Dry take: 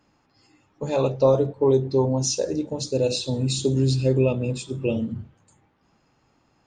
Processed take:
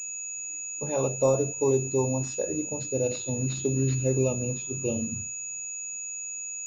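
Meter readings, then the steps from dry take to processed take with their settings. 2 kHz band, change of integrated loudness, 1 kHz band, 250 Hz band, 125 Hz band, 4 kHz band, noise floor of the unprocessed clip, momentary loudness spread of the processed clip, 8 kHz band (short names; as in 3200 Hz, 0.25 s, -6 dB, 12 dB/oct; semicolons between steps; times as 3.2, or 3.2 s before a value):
+2.0 dB, -5.0 dB, -5.0 dB, -5.0 dB, -5.0 dB, -15.0 dB, -66 dBFS, 8 LU, +6.0 dB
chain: whine 2600 Hz -38 dBFS; pulse-width modulation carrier 6800 Hz; gain -5 dB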